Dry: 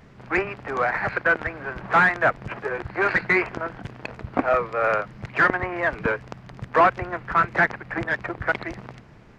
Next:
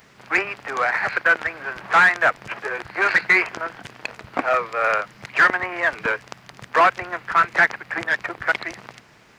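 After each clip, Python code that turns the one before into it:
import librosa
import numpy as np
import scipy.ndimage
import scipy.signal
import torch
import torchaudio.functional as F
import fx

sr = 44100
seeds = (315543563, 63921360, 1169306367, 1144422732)

y = fx.tilt_eq(x, sr, slope=3.5)
y = y * librosa.db_to_amplitude(1.5)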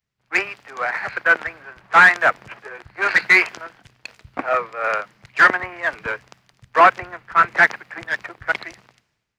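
y = fx.band_widen(x, sr, depth_pct=100)
y = y * librosa.db_to_amplitude(-1.0)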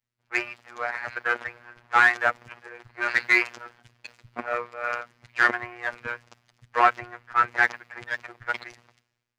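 y = fx.robotise(x, sr, hz=120.0)
y = y * librosa.db_to_amplitude(-4.5)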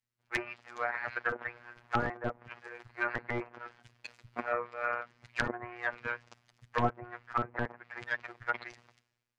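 y = (np.mod(10.0 ** (8.5 / 20.0) * x + 1.0, 2.0) - 1.0) / 10.0 ** (8.5 / 20.0)
y = fx.env_lowpass_down(y, sr, base_hz=700.0, full_db=-21.0)
y = y * librosa.db_to_amplitude(-3.5)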